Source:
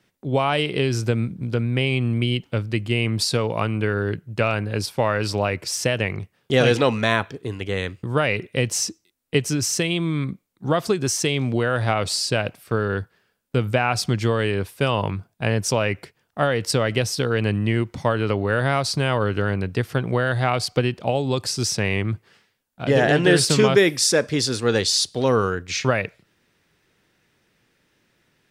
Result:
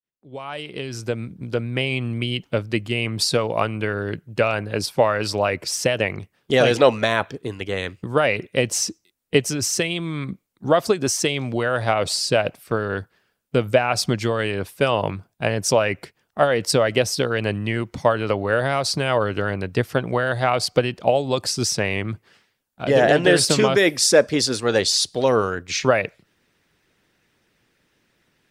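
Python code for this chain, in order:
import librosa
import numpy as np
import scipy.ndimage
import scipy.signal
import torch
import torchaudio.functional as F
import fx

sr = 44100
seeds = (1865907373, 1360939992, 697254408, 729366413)

y = fx.fade_in_head(x, sr, length_s=1.81)
y = fx.dynamic_eq(y, sr, hz=610.0, q=2.4, threshold_db=-35.0, ratio=4.0, max_db=6)
y = fx.hpss(y, sr, part='percussive', gain_db=7)
y = F.gain(torch.from_numpy(y), -4.5).numpy()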